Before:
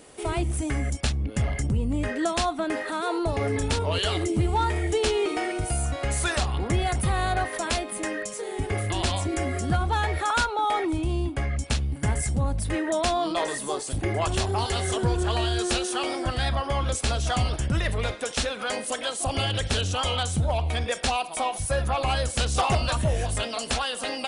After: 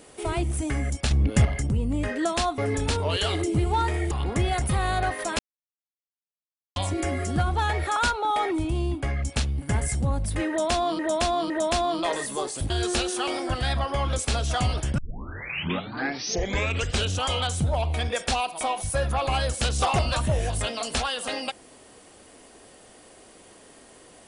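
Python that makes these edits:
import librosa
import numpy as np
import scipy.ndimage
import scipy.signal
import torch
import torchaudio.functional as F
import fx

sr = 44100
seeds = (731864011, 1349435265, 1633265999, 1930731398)

y = fx.edit(x, sr, fx.clip_gain(start_s=1.11, length_s=0.34, db=6.5),
    fx.cut(start_s=2.58, length_s=0.82),
    fx.cut(start_s=4.93, length_s=1.52),
    fx.silence(start_s=7.73, length_s=1.37),
    fx.repeat(start_s=12.82, length_s=0.51, count=3),
    fx.cut(start_s=14.02, length_s=1.44),
    fx.tape_start(start_s=17.74, length_s=2.12), tone=tone)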